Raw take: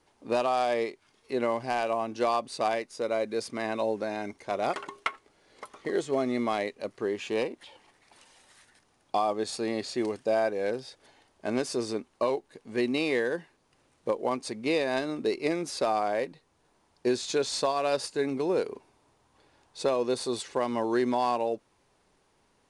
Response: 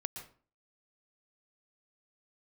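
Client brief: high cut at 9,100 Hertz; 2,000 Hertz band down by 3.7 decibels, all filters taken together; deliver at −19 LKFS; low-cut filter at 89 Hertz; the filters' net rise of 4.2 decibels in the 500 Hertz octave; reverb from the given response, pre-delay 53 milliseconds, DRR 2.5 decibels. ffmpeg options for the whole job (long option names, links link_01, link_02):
-filter_complex "[0:a]highpass=89,lowpass=9100,equalizer=frequency=500:width_type=o:gain=5.5,equalizer=frequency=2000:width_type=o:gain=-5,asplit=2[link_01][link_02];[1:a]atrim=start_sample=2205,adelay=53[link_03];[link_02][link_03]afir=irnorm=-1:irlink=0,volume=-2dB[link_04];[link_01][link_04]amix=inputs=2:normalize=0,volume=6dB"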